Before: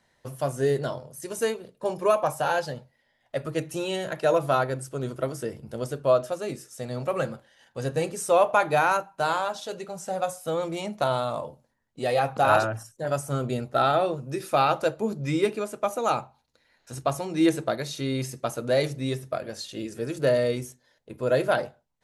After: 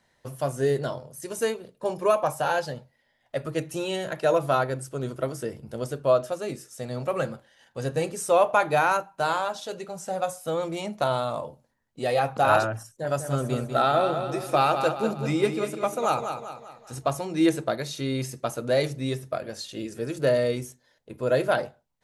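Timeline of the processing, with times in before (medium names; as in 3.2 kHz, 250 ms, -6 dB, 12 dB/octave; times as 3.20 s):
12.90–17.08 s: feedback delay 196 ms, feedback 45%, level -7.5 dB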